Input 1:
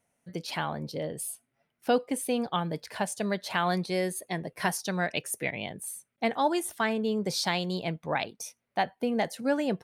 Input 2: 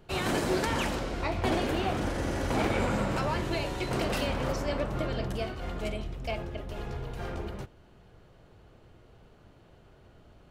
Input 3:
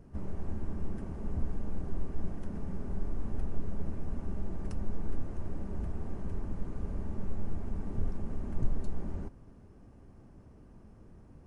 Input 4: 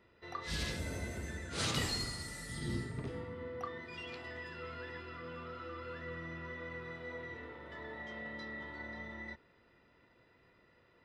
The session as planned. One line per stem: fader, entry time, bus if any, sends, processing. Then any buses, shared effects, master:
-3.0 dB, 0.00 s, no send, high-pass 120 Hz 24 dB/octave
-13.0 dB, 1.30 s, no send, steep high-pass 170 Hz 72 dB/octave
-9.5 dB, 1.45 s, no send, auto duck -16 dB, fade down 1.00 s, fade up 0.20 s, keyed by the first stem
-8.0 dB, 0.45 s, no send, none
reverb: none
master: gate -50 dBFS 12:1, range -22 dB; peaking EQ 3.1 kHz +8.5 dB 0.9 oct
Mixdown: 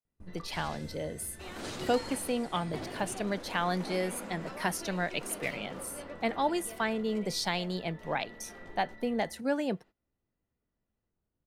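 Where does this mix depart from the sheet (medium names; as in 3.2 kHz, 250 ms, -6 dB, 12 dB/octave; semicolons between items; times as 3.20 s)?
stem 3: entry 1.45 s -> 0.05 s; stem 4: entry 0.45 s -> 0.05 s; master: missing peaking EQ 3.1 kHz +8.5 dB 0.9 oct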